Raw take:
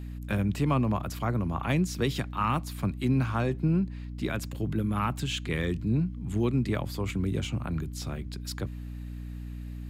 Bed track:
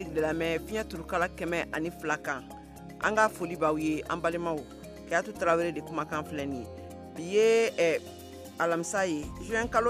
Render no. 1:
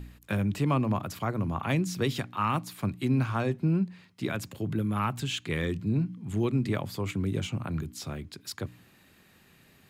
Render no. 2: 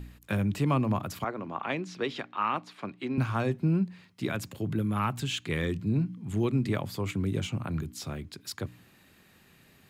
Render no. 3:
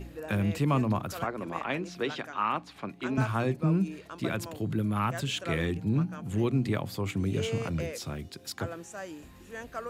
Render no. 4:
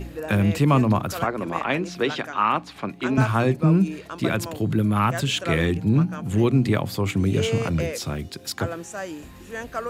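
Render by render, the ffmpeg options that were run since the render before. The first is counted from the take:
-af "bandreject=f=60:t=h:w=4,bandreject=f=120:t=h:w=4,bandreject=f=180:t=h:w=4,bandreject=f=240:t=h:w=4,bandreject=f=300:t=h:w=4"
-filter_complex "[0:a]asettb=1/sr,asplit=3[a][b][c];[a]atrim=end=1.244[d];[b]atrim=start=1.24:end=3.18,asetpts=PTS-STARTPTS,afade=t=in:d=0.004:c=qsin,afade=t=out:st=1.936:d=0.004:c=qsin,highpass=320,lowpass=3.7k[e];[c]atrim=start=3.176[f];[d][e]acrossfade=d=0.004:c1=hsin:c2=qsin[g];[g][f]acrossfade=d=0.004:c1=qsin:c2=hsin"
-filter_complex "[1:a]volume=-12dB[a];[0:a][a]amix=inputs=2:normalize=0"
-af "volume=8dB"

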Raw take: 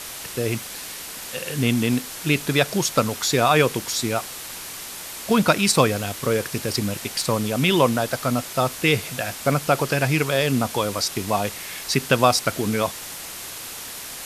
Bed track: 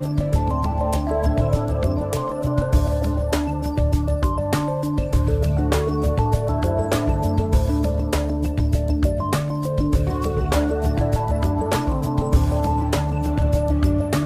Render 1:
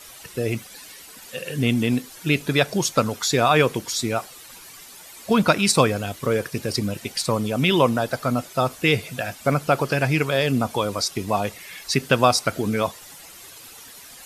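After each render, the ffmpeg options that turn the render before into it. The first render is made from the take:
-af "afftdn=nr=12:nf=-35"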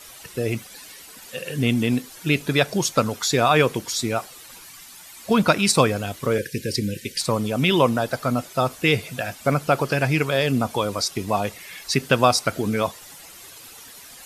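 -filter_complex "[0:a]asettb=1/sr,asplit=3[a][b][c];[a]atrim=end=4.654[d];[b]atrim=start=4.65:end=5.24,asetpts=PTS-STARTPTS,afade=t=in:d=0.004:c=qsin,afade=t=out:st=0.586:d=0.004:c=qsin,equalizer=f=470:w=1.7:g=-10[e];[c]atrim=start=5.236[f];[d][e]acrossfade=d=0.004:c1=hsin:c2=qsin[g];[g][f]acrossfade=d=0.004:c1=qsin:c2=hsin,asettb=1/sr,asplit=3[h][i][j];[h]atrim=end=6.384[k];[i]atrim=start=6.38:end=7.21,asetpts=PTS-STARTPTS,afade=t=in:d=0.004:c=qsin,afade=t=out:st=0.826:d=0.004:c=qsin,asuperstop=centerf=920:order=20:qfactor=0.93[l];[j]atrim=start=7.206[m];[k][l]acrossfade=d=0.004:c1=hsin:c2=qsin[n];[n][m]acrossfade=d=0.004:c1=qsin:c2=hsin"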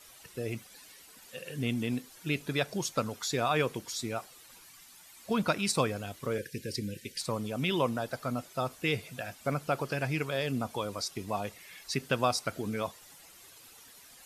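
-af "volume=-11dB"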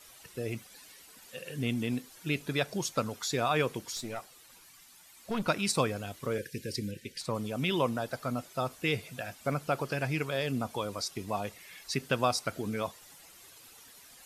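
-filter_complex "[0:a]asettb=1/sr,asplit=3[a][b][c];[a]atrim=end=3.964[d];[b]atrim=start=3.96:end=5.48,asetpts=PTS-STARTPTS,afade=t=in:d=0.004:c=qsin,afade=t=out:st=1.516:d=0.004:c=qsin,aeval=exprs='(tanh(20*val(0)+0.5)-tanh(0.5))/20':c=same[e];[c]atrim=start=5.476[f];[d][e]acrossfade=d=0.004:c1=hsin:c2=qsin[g];[g][f]acrossfade=d=0.004:c1=qsin:c2=hsin,asettb=1/sr,asplit=3[h][i][j];[h]atrim=end=6.914[k];[i]atrim=start=6.91:end=7.35,asetpts=PTS-STARTPTS,afade=t=in:d=0.004:c=qsin,afade=t=out:st=0.436:d=0.004:c=qsin,highshelf=f=4.7k:g=-6.5[l];[j]atrim=start=7.346[m];[k][l]acrossfade=d=0.004:c1=hsin:c2=qsin[n];[n][m]acrossfade=d=0.004:c1=qsin:c2=hsin"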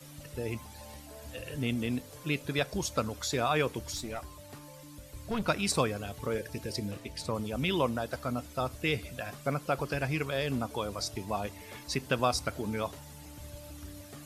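-filter_complex "[1:a]volume=-27.5dB[a];[0:a][a]amix=inputs=2:normalize=0"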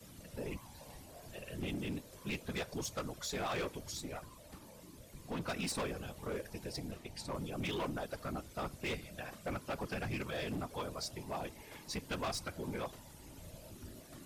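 -af "afftfilt=real='hypot(re,im)*cos(2*PI*random(0))':imag='hypot(re,im)*sin(2*PI*random(1))':win_size=512:overlap=0.75,asoftclip=type=hard:threshold=-34dB"

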